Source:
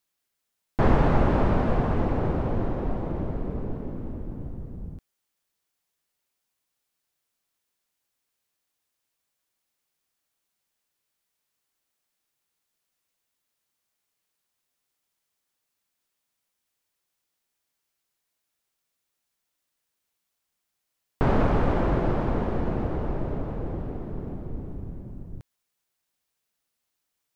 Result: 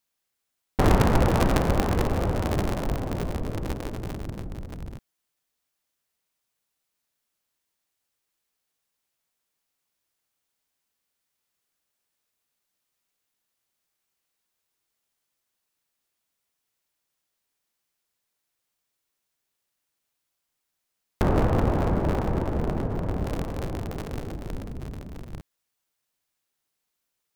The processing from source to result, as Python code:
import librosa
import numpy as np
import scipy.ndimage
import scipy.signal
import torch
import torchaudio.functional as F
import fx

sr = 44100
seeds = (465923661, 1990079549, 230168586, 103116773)

y = fx.cycle_switch(x, sr, every=3, mode='inverted')
y = fx.high_shelf(y, sr, hz=2100.0, db=-12.0, at=(21.22, 23.24))